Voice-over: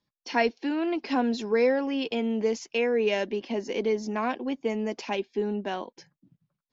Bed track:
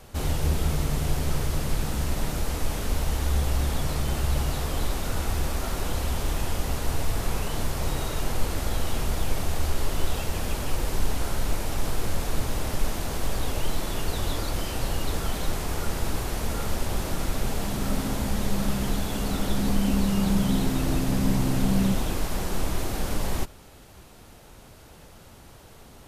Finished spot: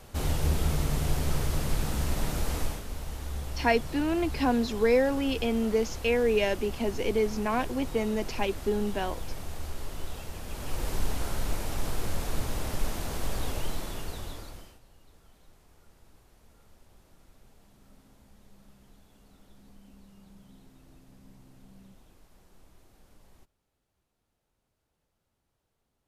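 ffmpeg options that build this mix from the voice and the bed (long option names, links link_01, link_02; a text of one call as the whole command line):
ffmpeg -i stem1.wav -i stem2.wav -filter_complex "[0:a]adelay=3300,volume=0dB[link_01];[1:a]volume=5dB,afade=type=out:start_time=2.6:duration=0.23:silence=0.354813,afade=type=in:start_time=10.46:duration=0.42:silence=0.446684,afade=type=out:start_time=13.48:duration=1.32:silence=0.0446684[link_02];[link_01][link_02]amix=inputs=2:normalize=0" out.wav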